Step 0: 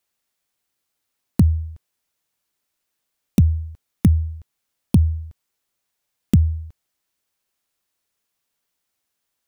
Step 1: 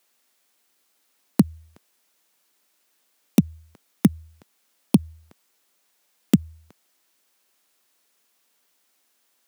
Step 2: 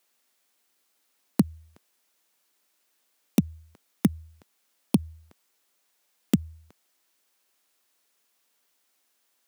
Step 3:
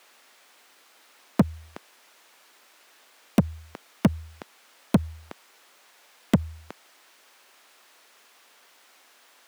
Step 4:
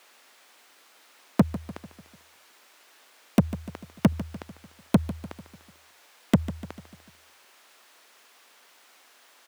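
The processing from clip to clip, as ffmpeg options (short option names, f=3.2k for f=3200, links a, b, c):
-af "highpass=f=200:w=0.5412,highpass=f=200:w=1.3066,alimiter=level_in=13dB:limit=-1dB:release=50:level=0:latency=1,volume=-3.5dB"
-af "asubboost=boost=3:cutoff=71,volume=-3.5dB"
-filter_complex "[0:a]asplit=2[a][b];[b]highpass=f=720:p=1,volume=30dB,asoftclip=type=tanh:threshold=-7.5dB[c];[a][c]amix=inputs=2:normalize=0,lowpass=f=1.9k:p=1,volume=-6dB"
-af "aecho=1:1:148|296|444|592|740:0.178|0.0925|0.0481|0.025|0.013"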